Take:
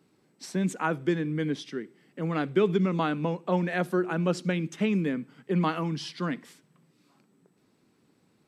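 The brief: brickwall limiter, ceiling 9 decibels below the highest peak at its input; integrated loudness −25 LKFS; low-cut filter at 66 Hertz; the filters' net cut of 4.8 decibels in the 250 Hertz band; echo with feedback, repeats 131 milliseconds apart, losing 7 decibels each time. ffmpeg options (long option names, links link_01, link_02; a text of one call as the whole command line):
ffmpeg -i in.wav -af "highpass=66,equalizer=frequency=250:width_type=o:gain=-8,alimiter=limit=-23.5dB:level=0:latency=1,aecho=1:1:131|262|393|524|655:0.447|0.201|0.0905|0.0407|0.0183,volume=8.5dB" out.wav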